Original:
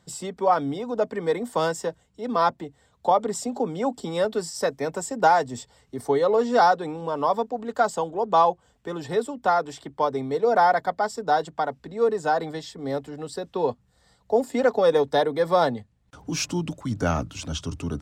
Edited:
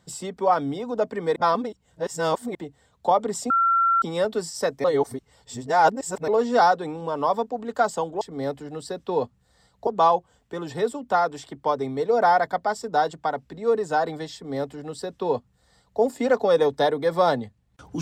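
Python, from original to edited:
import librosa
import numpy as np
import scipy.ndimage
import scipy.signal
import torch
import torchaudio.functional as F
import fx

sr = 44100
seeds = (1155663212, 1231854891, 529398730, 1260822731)

y = fx.edit(x, sr, fx.reverse_span(start_s=1.36, length_s=1.19),
    fx.bleep(start_s=3.5, length_s=0.52, hz=1360.0, db=-16.5),
    fx.reverse_span(start_s=4.84, length_s=1.44),
    fx.duplicate(start_s=12.68, length_s=1.66, to_s=8.21), tone=tone)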